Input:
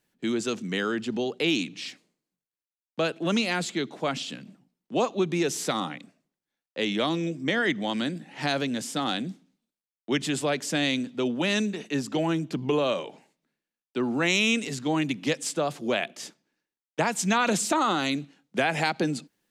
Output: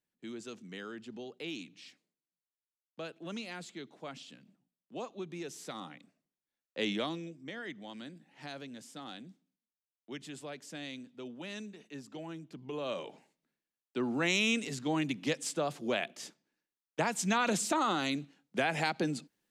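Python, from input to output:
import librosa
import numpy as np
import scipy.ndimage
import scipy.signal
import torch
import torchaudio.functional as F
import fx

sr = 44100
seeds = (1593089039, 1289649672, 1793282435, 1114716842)

y = fx.gain(x, sr, db=fx.line((5.61, -16.0), (6.89, -5.0), (7.37, -17.5), (12.65, -17.5), (13.06, -6.0)))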